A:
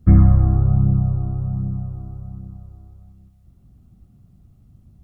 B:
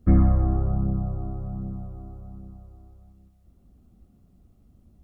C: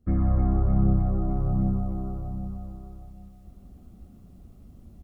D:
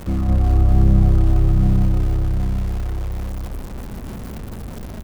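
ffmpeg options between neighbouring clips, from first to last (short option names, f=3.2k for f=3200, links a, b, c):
-af "equalizer=f=125:t=o:w=1:g=-11,equalizer=f=250:t=o:w=1:g=3,equalizer=f=500:t=o:w=1:g=5,volume=-3dB"
-af "aecho=1:1:303|606|909|1212|1515|1818:0.237|0.13|0.0717|0.0395|0.0217|0.0119,dynaudnorm=f=180:g=3:m=16dB,volume=-8.5dB"
-filter_complex "[0:a]aeval=exprs='val(0)+0.5*0.0316*sgn(val(0))':c=same,asplit=2[a][b];[b]adelay=214,lowpass=f=1.1k:p=1,volume=-3dB,asplit=2[c][d];[d]adelay=214,lowpass=f=1.1k:p=1,volume=0.53,asplit=2[e][f];[f]adelay=214,lowpass=f=1.1k:p=1,volume=0.53,asplit=2[g][h];[h]adelay=214,lowpass=f=1.1k:p=1,volume=0.53,asplit=2[i][j];[j]adelay=214,lowpass=f=1.1k:p=1,volume=0.53,asplit=2[k][l];[l]adelay=214,lowpass=f=1.1k:p=1,volume=0.53,asplit=2[m][n];[n]adelay=214,lowpass=f=1.1k:p=1,volume=0.53[o];[a][c][e][g][i][k][m][o]amix=inputs=8:normalize=0,volume=1.5dB"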